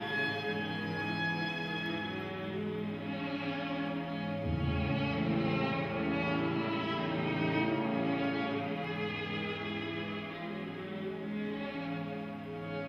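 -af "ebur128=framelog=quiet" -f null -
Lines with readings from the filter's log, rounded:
Integrated loudness:
  I:         -34.9 LUFS
  Threshold: -44.8 LUFS
Loudness range:
  LRA:         5.2 LU
  Threshold: -54.5 LUFS
  LRA low:   -37.7 LUFS
  LRA high:  -32.5 LUFS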